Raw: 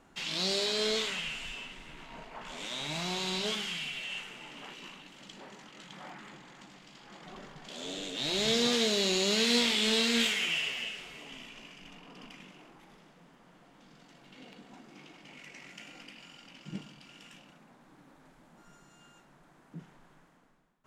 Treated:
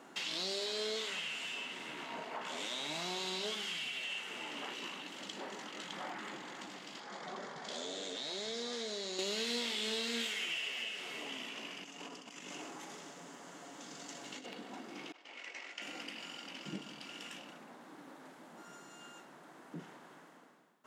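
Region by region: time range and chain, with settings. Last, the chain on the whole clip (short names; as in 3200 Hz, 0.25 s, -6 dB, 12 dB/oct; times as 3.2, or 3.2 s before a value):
7–9.19 compressor 2.5:1, threshold -37 dBFS + speaker cabinet 130–9500 Hz, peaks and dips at 310 Hz -9 dB, 2800 Hz -9 dB, 8200 Hz -3 dB
11.84–14.46 bell 6900 Hz +13 dB 0.75 oct + comb 7.1 ms, depth 33% + negative-ratio compressor -52 dBFS, ratio -0.5
15.12–15.82 expander -48 dBFS + BPF 460–6100 Hz
whole clip: Chebyshev high-pass 300 Hz, order 2; notch 2400 Hz, Q 25; compressor 3:1, threshold -47 dBFS; gain +7 dB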